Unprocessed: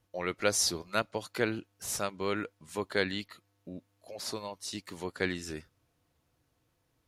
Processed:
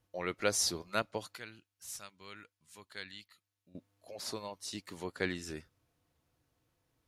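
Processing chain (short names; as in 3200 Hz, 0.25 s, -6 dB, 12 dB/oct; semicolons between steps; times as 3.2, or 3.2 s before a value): 1.36–3.75 passive tone stack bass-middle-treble 5-5-5; gain -3 dB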